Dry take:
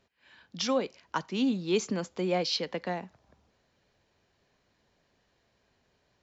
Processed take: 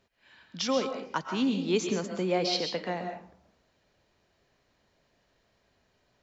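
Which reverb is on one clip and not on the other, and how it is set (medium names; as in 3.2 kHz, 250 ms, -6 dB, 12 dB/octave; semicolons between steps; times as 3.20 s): algorithmic reverb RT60 0.54 s, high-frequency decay 0.6×, pre-delay 90 ms, DRR 4.5 dB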